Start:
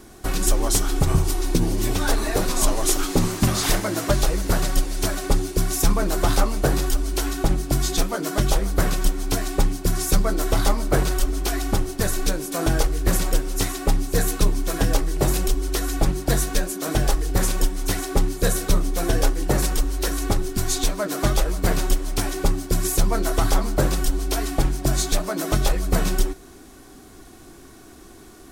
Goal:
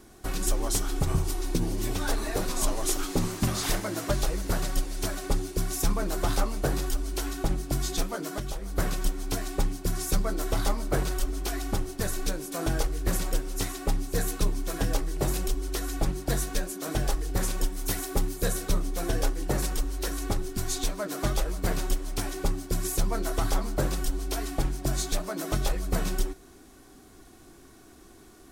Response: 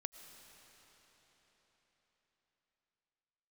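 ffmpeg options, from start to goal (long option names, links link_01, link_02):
-filter_complex "[0:a]asettb=1/sr,asplit=3[link_01][link_02][link_03];[link_01]atrim=end=8.214[link_04];[link_02]atrim=start=8.21:end=8.76,asetpts=PTS-STARTPTS,afade=type=in:duration=0.004:curve=qsin,afade=type=out:start_time=0.546:duration=0.004:curve=qsin,acompressor=threshold=-23dB:ratio=5[link_05];[link_03]atrim=start=8.756[link_06];[link_04][link_05]acrossfade=duration=0.004:curve1=hsin:curve2=qsin[link_07];[link_07][link_06]acrossfade=duration=0.004:curve1=qsin:curve2=hsin,asettb=1/sr,asplit=3[link_08][link_09][link_10];[link_08]atrim=end=17.724[link_11];[link_09]atrim=start=17.72:end=18.44,asetpts=PTS-STARTPTS,afade=type=in:duration=0.004:curve=qsin,afade=type=out:start_time=0.716:duration=0.004:curve=qsin,highshelf=frequency=11000:gain=11[link_12];[link_10]atrim=start=18.436[link_13];[link_11][link_12]acrossfade=duration=0.004:curve1=hsin:curve2=qsin[link_14];[link_14][link_13]acrossfade=duration=0.004:curve1=qsin:curve2=hsin,volume=-7dB"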